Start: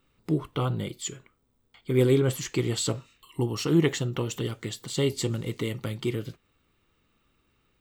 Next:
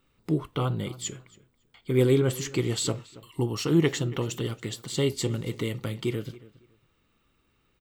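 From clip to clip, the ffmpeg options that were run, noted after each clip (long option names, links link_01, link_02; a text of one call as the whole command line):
ffmpeg -i in.wav -filter_complex "[0:a]asplit=2[link_01][link_02];[link_02]adelay=278,lowpass=frequency=3900:poles=1,volume=-19dB,asplit=2[link_03][link_04];[link_04]adelay=278,lowpass=frequency=3900:poles=1,volume=0.22[link_05];[link_01][link_03][link_05]amix=inputs=3:normalize=0" out.wav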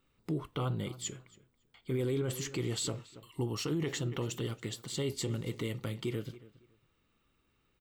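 ffmpeg -i in.wav -af "alimiter=limit=-20.5dB:level=0:latency=1:release=23,volume=-5dB" out.wav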